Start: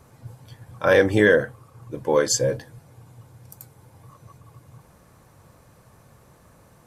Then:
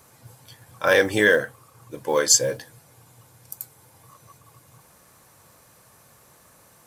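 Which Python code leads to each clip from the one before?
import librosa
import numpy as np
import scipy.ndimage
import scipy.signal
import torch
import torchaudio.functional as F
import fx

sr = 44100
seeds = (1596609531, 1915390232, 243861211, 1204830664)

y = fx.tilt_eq(x, sr, slope=2.5)
y = fx.quant_float(y, sr, bits=4)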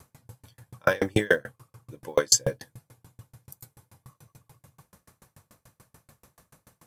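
y = fx.bass_treble(x, sr, bass_db=8, treble_db=-1)
y = fx.tremolo_decay(y, sr, direction='decaying', hz=6.9, depth_db=36)
y = y * 10.0 ** (2.5 / 20.0)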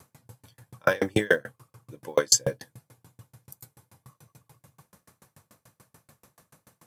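y = scipy.signal.sosfilt(scipy.signal.butter(2, 100.0, 'highpass', fs=sr, output='sos'), x)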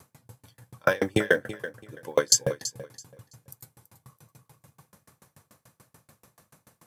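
y = fx.echo_feedback(x, sr, ms=331, feedback_pct=23, wet_db=-14.0)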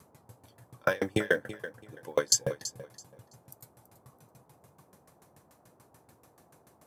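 y = fx.dmg_noise_band(x, sr, seeds[0], low_hz=74.0, high_hz=920.0, level_db=-59.0)
y = y * 10.0 ** (-4.5 / 20.0)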